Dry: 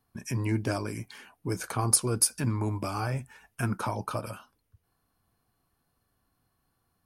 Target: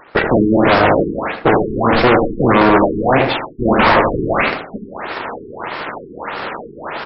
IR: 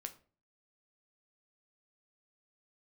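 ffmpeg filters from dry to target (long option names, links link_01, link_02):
-filter_complex "[0:a]highpass=150,equalizer=frequency=6100:width_type=o:width=0.69:gain=-13,areverse,acompressor=mode=upward:threshold=-38dB:ratio=2.5,areverse,aeval=exprs='0.316*(cos(1*acos(clip(val(0)/0.316,-1,1)))-cos(1*PI/2))+0.1*(cos(6*acos(clip(val(0)/0.316,-1,1)))-cos(6*PI/2))':channel_layout=same,aeval=exprs='abs(val(0))':channel_layout=same,asplit=2[link_01][link_02];[link_02]highpass=frequency=720:poles=1,volume=39dB,asoftclip=type=tanh:threshold=-8dB[link_03];[link_01][link_03]amix=inputs=2:normalize=0,lowpass=frequency=2000:poles=1,volume=-6dB,asplit=2[link_04][link_05];[link_05]adelay=79,lowpass=frequency=1200:poles=1,volume=-4.5dB,asplit=2[link_06][link_07];[link_07]adelay=79,lowpass=frequency=1200:poles=1,volume=0.3,asplit=2[link_08][link_09];[link_09]adelay=79,lowpass=frequency=1200:poles=1,volume=0.3,asplit=2[link_10][link_11];[link_11]adelay=79,lowpass=frequency=1200:poles=1,volume=0.3[link_12];[link_04][link_06][link_08][link_10][link_12]amix=inputs=5:normalize=0,asplit=2[link_13][link_14];[1:a]atrim=start_sample=2205[link_15];[link_14][link_15]afir=irnorm=-1:irlink=0,volume=8dB[link_16];[link_13][link_16]amix=inputs=2:normalize=0,alimiter=level_in=3dB:limit=-1dB:release=50:level=0:latency=1,afftfilt=real='re*lt(b*sr/1024,430*pow(5600/430,0.5+0.5*sin(2*PI*1.6*pts/sr)))':imag='im*lt(b*sr/1024,430*pow(5600/430,0.5+0.5*sin(2*PI*1.6*pts/sr)))':win_size=1024:overlap=0.75,volume=-2dB"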